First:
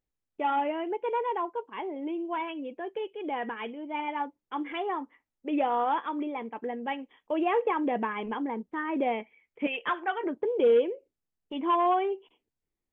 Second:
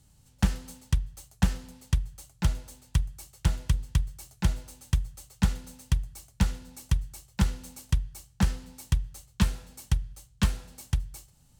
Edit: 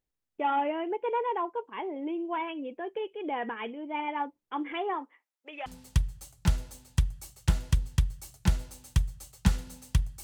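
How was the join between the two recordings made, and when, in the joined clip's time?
first
4.93–5.66 s: high-pass 270 Hz -> 1.4 kHz
5.66 s: go over to second from 1.63 s

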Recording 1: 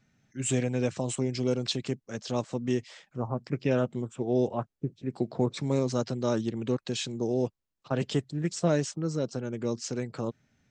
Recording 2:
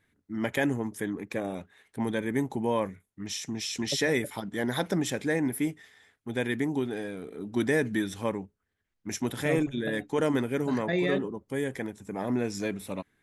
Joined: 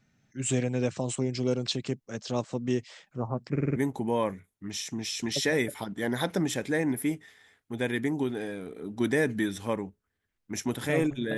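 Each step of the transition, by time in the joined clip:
recording 1
3.51 s: stutter in place 0.05 s, 5 plays
3.76 s: go over to recording 2 from 2.32 s

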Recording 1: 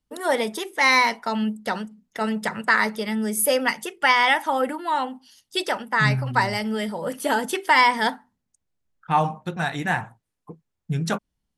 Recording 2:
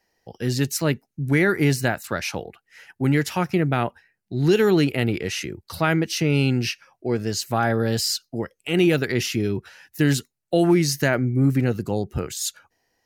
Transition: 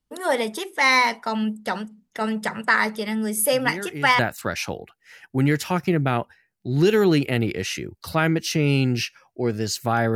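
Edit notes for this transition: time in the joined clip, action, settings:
recording 1
3.44 s: add recording 2 from 1.10 s 0.75 s -13 dB
4.19 s: go over to recording 2 from 1.85 s

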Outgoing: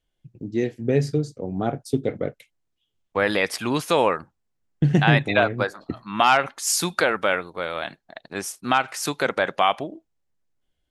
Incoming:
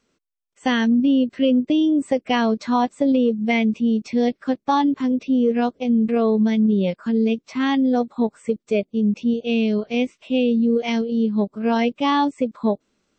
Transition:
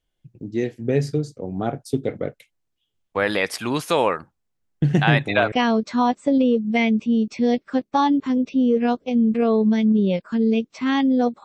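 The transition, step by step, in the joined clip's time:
outgoing
5.52 s: go over to incoming from 2.26 s

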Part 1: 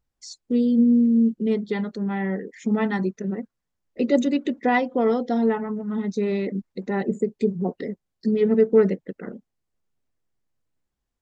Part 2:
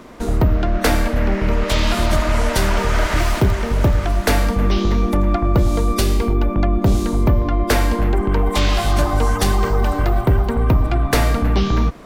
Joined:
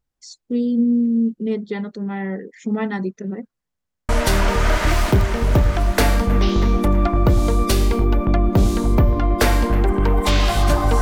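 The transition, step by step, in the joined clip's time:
part 1
3.69 s: stutter in place 0.10 s, 4 plays
4.09 s: go over to part 2 from 2.38 s

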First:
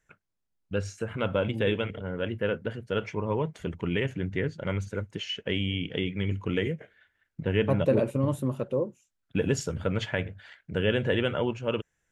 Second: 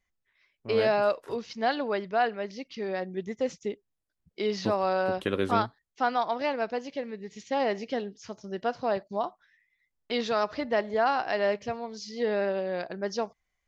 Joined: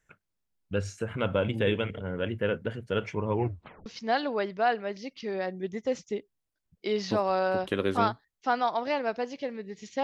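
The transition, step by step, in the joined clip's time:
first
3.33 s: tape stop 0.53 s
3.86 s: go over to second from 1.40 s

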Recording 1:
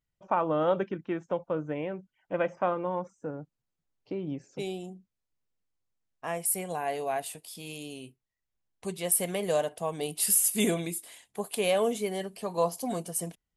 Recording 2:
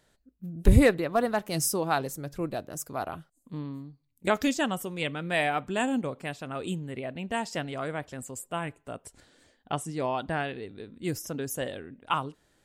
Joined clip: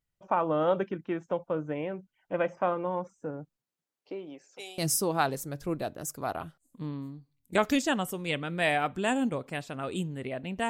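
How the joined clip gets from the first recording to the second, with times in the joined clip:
recording 1
3.56–4.78 s: high-pass 150 Hz -> 990 Hz
4.78 s: go over to recording 2 from 1.50 s

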